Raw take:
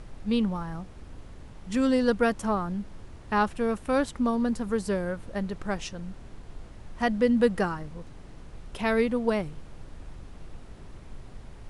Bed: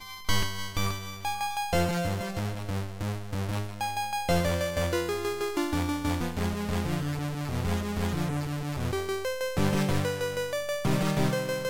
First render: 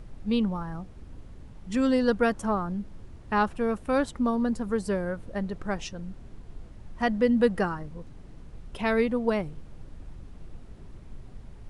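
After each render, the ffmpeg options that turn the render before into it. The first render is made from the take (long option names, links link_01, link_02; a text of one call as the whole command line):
ffmpeg -i in.wav -af "afftdn=noise_reduction=6:noise_floor=-46" out.wav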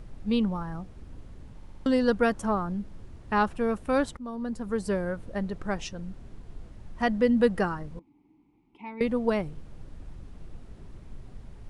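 ffmpeg -i in.wav -filter_complex "[0:a]asettb=1/sr,asplit=3[link_01][link_02][link_03];[link_01]atrim=end=7.994[link_04];[link_02]atrim=start=7.99:end=9.01,asetpts=PTS-STARTPTS,afade=type=in:duration=0.004:curve=qsin,afade=type=out:start_time=1.016:duration=0.004:curve=qsin,asplit=3[link_05][link_06][link_07];[link_05]bandpass=frequency=300:width_type=q:width=8,volume=0dB[link_08];[link_06]bandpass=frequency=870:width_type=q:width=8,volume=-6dB[link_09];[link_07]bandpass=frequency=2240:width_type=q:width=8,volume=-9dB[link_10];[link_08][link_09][link_10]amix=inputs=3:normalize=0[link_11];[link_03]atrim=start=9.006[link_12];[link_04][link_11]acrossfade=duration=0.004:curve1=hsin:curve2=qsin[link_13];[link_13][link_12]acrossfade=duration=0.004:curve1=qsin:curve2=hsin,asplit=7[link_14][link_15][link_16][link_17][link_18][link_19][link_20];[link_14]atrim=end=1.622[link_21];[link_15]atrim=start=1.558:end=1.622[link_22];[link_16]atrim=start=1.558:end=1.622[link_23];[link_17]atrim=start=1.558:end=1.622[link_24];[link_18]atrim=start=1.558:end=1.622[link_25];[link_19]atrim=start=1.858:end=4.17,asetpts=PTS-STARTPTS,afade=type=out:start_time=2.308:duration=0.004:curve=hsin:silence=0.141254[link_26];[link_20]atrim=start=4.17,asetpts=PTS-STARTPTS,afade=type=in:duration=0.72:silence=0.141254[link_27];[link_21][link_22]acrossfade=duration=0.004:curve1=hsin:curve2=hsin[link_28];[link_28][link_23]acrossfade=duration=0.004:curve1=hsin:curve2=hsin[link_29];[link_29][link_24]acrossfade=duration=0.004:curve1=hsin:curve2=hsin[link_30];[link_30][link_25]acrossfade=duration=0.004:curve1=hsin:curve2=hsin[link_31];[link_26][link_27]concat=n=2:v=0:a=1[link_32];[link_31][link_32]acrossfade=duration=0.004:curve1=hsin:curve2=hsin" out.wav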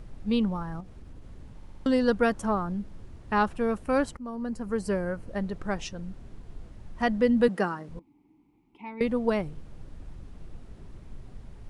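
ffmpeg -i in.wav -filter_complex "[0:a]asettb=1/sr,asplit=3[link_01][link_02][link_03];[link_01]atrim=end=0.804[link_04];[link_02]atrim=start=0.8:end=1.24,asetpts=PTS-STARTPTS,afade=type=in:duration=0.004:curve=qsin,afade=type=out:start_time=0.436:duration=0.004:curve=qsin,acompressor=threshold=-40dB:ratio=3:attack=3.2:release=140:knee=1:detection=peak[link_05];[link_03]atrim=start=1.236[link_06];[link_04][link_05]acrossfade=duration=0.004:curve1=hsin:curve2=qsin[link_07];[link_07][link_06]acrossfade=duration=0.004:curve1=qsin:curve2=hsin,asettb=1/sr,asplit=3[link_08][link_09][link_10];[link_08]atrim=end=3.844[link_11];[link_09]atrim=start=3.84:end=5.29,asetpts=PTS-STARTPTS,afade=type=in:duration=0.004:curve=qsin,afade=type=out:start_time=1.446:duration=0.004:curve=qsin,bandreject=frequency=3600:width=5.6[link_12];[link_10]atrim=start=5.286[link_13];[link_11][link_12]acrossfade=duration=0.004:curve1=hsin:curve2=qsin[link_14];[link_14][link_13]acrossfade=duration=0.004:curve1=qsin:curve2=hsin,asettb=1/sr,asplit=3[link_15][link_16][link_17];[link_15]atrim=end=7.484[link_18];[link_16]atrim=start=7.48:end=7.89,asetpts=PTS-STARTPTS,afade=type=in:duration=0.004:curve=qsin,afade=type=out:start_time=0.406:duration=0.004:curve=qsin,highpass=frequency=170:width=0.5412,highpass=frequency=170:width=1.3066[link_19];[link_17]atrim=start=7.886[link_20];[link_18][link_19]acrossfade=duration=0.004:curve1=hsin:curve2=qsin[link_21];[link_21][link_20]acrossfade=duration=0.004:curve1=qsin:curve2=hsin" out.wav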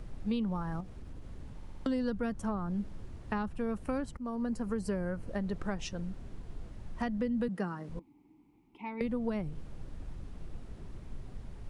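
ffmpeg -i in.wav -filter_complex "[0:a]acrossover=split=230[link_01][link_02];[link_01]alimiter=level_in=7dB:limit=-24dB:level=0:latency=1,volume=-7dB[link_03];[link_02]acompressor=threshold=-34dB:ratio=12[link_04];[link_03][link_04]amix=inputs=2:normalize=0" out.wav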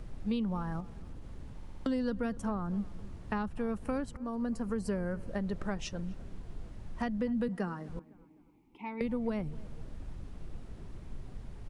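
ffmpeg -i in.wav -filter_complex "[0:a]asplit=2[link_01][link_02];[link_02]adelay=254,lowpass=frequency=2000:poles=1,volume=-20dB,asplit=2[link_03][link_04];[link_04]adelay=254,lowpass=frequency=2000:poles=1,volume=0.43,asplit=2[link_05][link_06];[link_06]adelay=254,lowpass=frequency=2000:poles=1,volume=0.43[link_07];[link_01][link_03][link_05][link_07]amix=inputs=4:normalize=0" out.wav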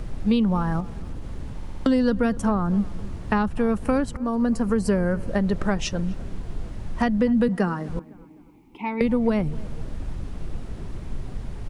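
ffmpeg -i in.wav -af "volume=12dB" out.wav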